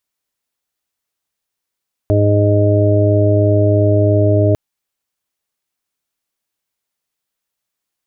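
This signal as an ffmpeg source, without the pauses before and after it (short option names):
-f lavfi -i "aevalsrc='0.266*sin(2*PI*103*t)+0.0266*sin(2*PI*206*t)+0.133*sin(2*PI*309*t)+0.119*sin(2*PI*412*t)+0.0299*sin(2*PI*515*t)+0.168*sin(2*PI*618*t)':d=2.45:s=44100"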